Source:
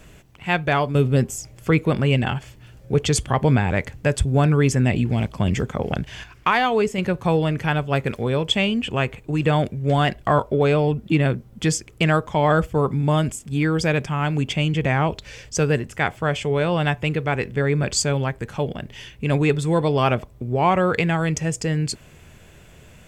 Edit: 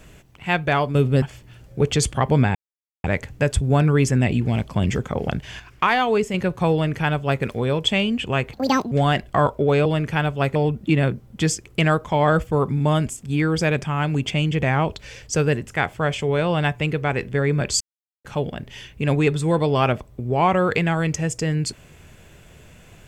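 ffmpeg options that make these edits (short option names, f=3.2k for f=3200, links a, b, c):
-filter_complex "[0:a]asplit=9[a][b][c][d][e][f][g][h][i];[a]atrim=end=1.222[j];[b]atrim=start=2.348:end=3.68,asetpts=PTS-STARTPTS,afade=t=out:st=1.328:d=0.004:c=hsin,apad=pad_dur=0.49[k];[c]atrim=start=3.68:end=9.174,asetpts=PTS-STARTPTS,afade=t=in:d=0.004:c=hsin[l];[d]atrim=start=9.17:end=9.84,asetpts=PTS-STARTPTS,asetrate=76734,aresample=44100,atrim=end_sample=16981,asetpts=PTS-STARTPTS[m];[e]atrim=start=9.836:end=10.782[n];[f]atrim=start=7.368:end=8.072[o];[g]atrim=start=10.778:end=18.03,asetpts=PTS-STARTPTS,afade=t=out:st=7.248:d=0.004:c=hsin[p];[h]atrim=start=18.03:end=18.47,asetpts=PTS-STARTPTS,volume=0[q];[i]atrim=start=18.47,asetpts=PTS-STARTPTS,afade=t=in:d=0.004:c=hsin[r];[k][l]concat=n=2:v=0:a=1[s];[j][s]acrossfade=d=0.004:c1=hsin:c2=hsin[t];[t][m]acrossfade=d=0.004:c1=hsin:c2=hsin[u];[u][n]acrossfade=d=0.004:c1=hsin:c2=hsin[v];[v][o]acrossfade=d=0.004:c1=hsin:c2=hsin[w];[p][q][r]concat=n=3:v=0:a=1[x];[w][x]acrossfade=d=0.004:c1=hsin:c2=hsin"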